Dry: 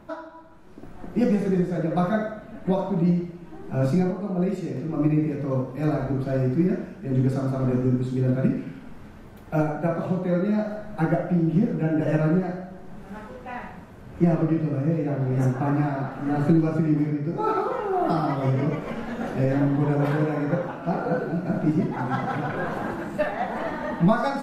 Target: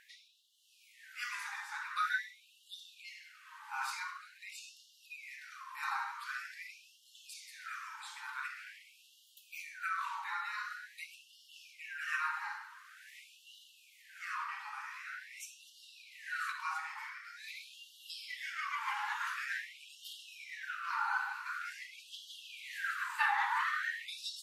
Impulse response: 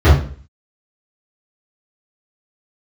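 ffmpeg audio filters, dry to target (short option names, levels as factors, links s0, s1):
-af "lowshelf=f=410:g=9.5,afftfilt=real='re*gte(b*sr/1024,780*pow(2800/780,0.5+0.5*sin(2*PI*0.46*pts/sr)))':imag='im*gte(b*sr/1024,780*pow(2800/780,0.5+0.5*sin(2*PI*0.46*pts/sr)))':win_size=1024:overlap=0.75,volume=1.26"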